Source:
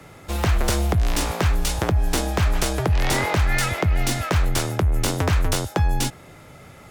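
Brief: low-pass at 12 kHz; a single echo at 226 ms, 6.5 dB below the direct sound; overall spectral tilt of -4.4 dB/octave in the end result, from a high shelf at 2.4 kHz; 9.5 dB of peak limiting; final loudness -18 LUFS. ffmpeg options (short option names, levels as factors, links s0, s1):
-af "lowpass=12000,highshelf=f=2400:g=7,alimiter=limit=0.168:level=0:latency=1,aecho=1:1:226:0.473,volume=2"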